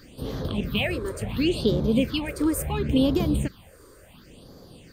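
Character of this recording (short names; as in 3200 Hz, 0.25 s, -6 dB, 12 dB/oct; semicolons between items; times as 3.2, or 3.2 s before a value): phasing stages 6, 0.71 Hz, lowest notch 190–2700 Hz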